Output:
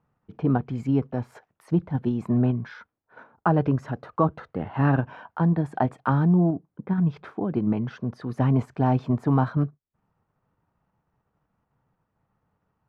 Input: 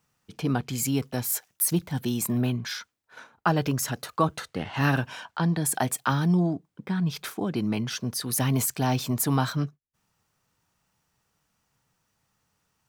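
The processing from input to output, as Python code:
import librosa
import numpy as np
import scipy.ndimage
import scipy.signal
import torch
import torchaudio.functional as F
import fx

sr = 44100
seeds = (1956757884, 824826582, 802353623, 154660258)

p1 = scipy.signal.sosfilt(scipy.signal.butter(2, 1100.0, 'lowpass', fs=sr, output='sos'), x)
p2 = fx.level_steps(p1, sr, step_db=13)
y = p1 + (p2 * librosa.db_to_amplitude(-2.5))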